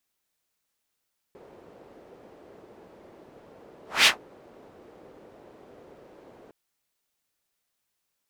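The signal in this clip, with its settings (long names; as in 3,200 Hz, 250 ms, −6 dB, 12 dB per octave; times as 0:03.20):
pass-by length 5.16 s, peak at 0:02.71, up 0.22 s, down 0.13 s, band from 450 Hz, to 3,200 Hz, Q 1.6, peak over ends 35 dB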